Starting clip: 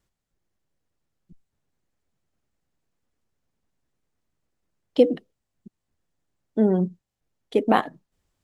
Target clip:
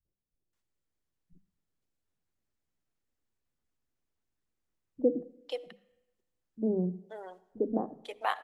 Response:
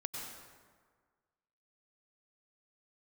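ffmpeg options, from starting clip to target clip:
-filter_complex "[0:a]bandreject=f=50:t=h:w=6,bandreject=f=100:t=h:w=6,bandreject=f=150:t=h:w=6,bandreject=f=200:t=h:w=6,acrossover=split=160|650[a][b][c];[b]adelay=50[d];[c]adelay=530[e];[a][d][e]amix=inputs=3:normalize=0,asplit=2[f][g];[1:a]atrim=start_sample=2205,asetrate=70560,aresample=44100[h];[g][h]afir=irnorm=-1:irlink=0,volume=-13.5dB[i];[f][i]amix=inputs=2:normalize=0,volume=-8dB"

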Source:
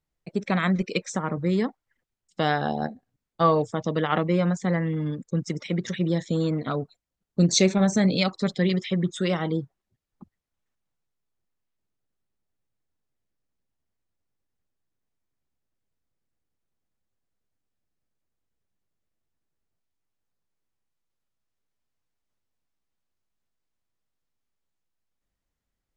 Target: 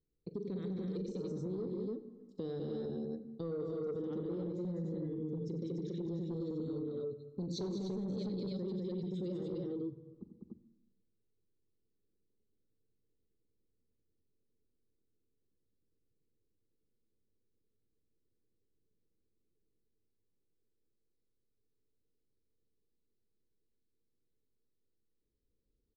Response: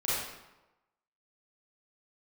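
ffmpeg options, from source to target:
-filter_complex "[0:a]firequalizer=gain_entry='entry(150,0);entry(450,9);entry(660,-18);entry(2500,-25);entry(4000,-5);entry(6400,-16);entry(9900,-23)':delay=0.05:min_phase=1,aecho=1:1:42|90|199|290|299:0.224|0.299|0.631|0.668|0.501,asoftclip=type=tanh:threshold=-10.5dB,alimiter=limit=-20.5dB:level=0:latency=1:release=44,asplit=2[a][b];[1:a]atrim=start_sample=2205,lowshelf=f=280:g=11.5[c];[b][c]afir=irnorm=-1:irlink=0,volume=-24dB[d];[a][d]amix=inputs=2:normalize=0,acompressor=threshold=-41dB:ratio=2,volume=-3.5dB"

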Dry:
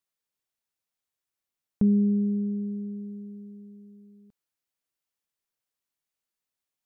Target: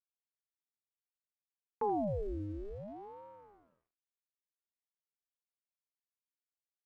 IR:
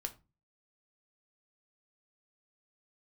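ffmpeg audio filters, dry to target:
-filter_complex "[0:a]agate=range=-33dB:threshold=-40dB:ratio=3:detection=peak,acrossover=split=160[a][b];[a]asoftclip=type=tanh:threshold=-36.5dB[c];[c][b]amix=inputs=2:normalize=0,aeval=exprs='val(0)+0.00126*sin(2*PI*530*n/s)':c=same,aeval=exprs='sgn(val(0))*max(abs(val(0))-0.00237,0)':c=same,asplit=2[d][e];[e]aecho=0:1:82:0.299[f];[d][f]amix=inputs=2:normalize=0,aeval=exprs='val(0)*sin(2*PI*420*n/s+420*0.75/0.61*sin(2*PI*0.61*n/s))':c=same,volume=-7.5dB"

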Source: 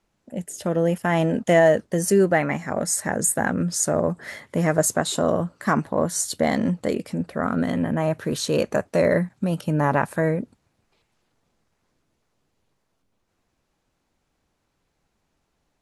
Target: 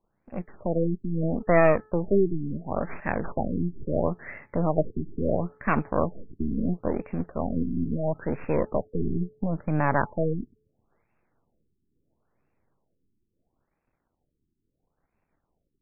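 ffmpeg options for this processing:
-af "aeval=exprs='if(lt(val(0),0),0.251*val(0),val(0))':c=same,bandreject=f=431.5:t=h:w=4,bandreject=f=863:t=h:w=4,bandreject=f=1.2945k:t=h:w=4,bandreject=f=1.726k:t=h:w=4,afftfilt=real='re*lt(b*sr/1024,390*pow(2800/390,0.5+0.5*sin(2*PI*0.74*pts/sr)))':imag='im*lt(b*sr/1024,390*pow(2800/390,0.5+0.5*sin(2*PI*0.74*pts/sr)))':win_size=1024:overlap=0.75"

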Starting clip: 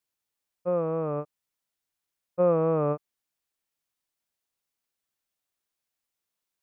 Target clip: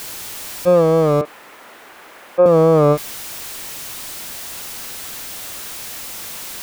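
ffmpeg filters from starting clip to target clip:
-filter_complex "[0:a]aeval=exprs='val(0)+0.5*0.0133*sgn(val(0))':c=same,asettb=1/sr,asplit=3[a][b][c];[a]atrim=end=1.214[d];[b]atrim=start=1.21:end=2.46,asetpts=PTS-STARTPTS,afade=t=in:d=0.004:c=qsin,afade=t=out:st=1.246:d=0.004:c=qsin,acrossover=split=250 2300:gain=0.1 1 0.1[e][f][g];[e][f][g]amix=inputs=3:normalize=0[h];[c]atrim=start=2.456[i];[d][h]acrossfade=d=0.004:c1=hsin:c2=qsin[j];[j][i]acrossfade=d=0.004:c1=qsin:c2=hsin,alimiter=level_in=16dB:limit=-1dB:release=50:level=0:latency=1,volume=-2.5dB"

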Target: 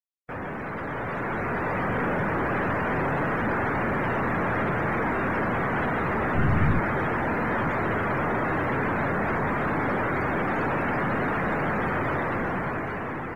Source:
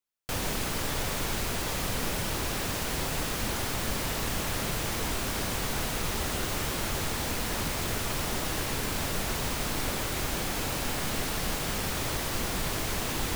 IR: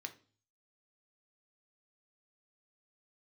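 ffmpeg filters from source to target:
-filter_complex "[0:a]highpass=120,highshelf=f=2.4k:t=q:w=1.5:g=-9.5,asplit=2[a][b];[b]adelay=44,volume=-13.5dB[c];[a][c]amix=inputs=2:normalize=0,aeval=exprs='(tanh(56.2*val(0)+0.2)-tanh(0.2))/56.2':c=same,asplit=3[d][e][f];[d]afade=t=out:st=6.35:d=0.02[g];[e]asubboost=boost=5.5:cutoff=170,afade=t=in:st=6.35:d=0.02,afade=t=out:st=6.78:d=0.02[h];[f]afade=t=in:st=6.78:d=0.02[i];[g][h][i]amix=inputs=3:normalize=0,afftdn=nr=29:nf=-44,dynaudnorm=f=380:g=7:m=8dB,volume=5.5dB" -ar 48000 -c:a sbc -b:a 192k

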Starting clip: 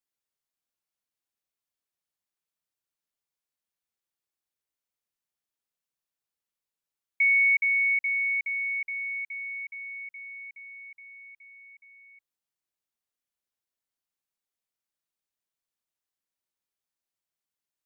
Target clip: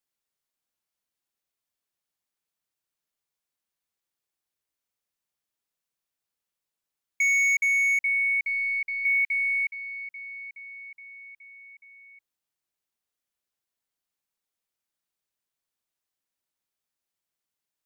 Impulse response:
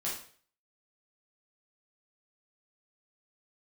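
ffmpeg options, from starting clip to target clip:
-filter_complex "[0:a]volume=23dB,asoftclip=hard,volume=-23dB,asettb=1/sr,asplit=3[a][b][c];[a]atrim=end=9.054[d];[b]atrim=start=9.05:end=9.71,asetpts=PTS-STARTPTS,afade=t=in:d=0.004:c=qsin,afade=t=out:st=0.656:d=0.004:c=qsin,highpass=f=2.1k:t=q:w=2.4[e];[c]atrim=start=9.706[f];[d][e]acrossfade=d=0.004:c1=hsin:c2=qsin[g];[g][f]acrossfade=d=0.004:c1=qsin:c2=hsin,aeval=exprs='0.0841*(cos(1*acos(clip(val(0)/0.0841,-1,1)))-cos(1*PI/2))+0.00075*(cos(6*acos(clip(val(0)/0.0841,-1,1)))-cos(6*PI/2))':c=same,volume=2.5dB"

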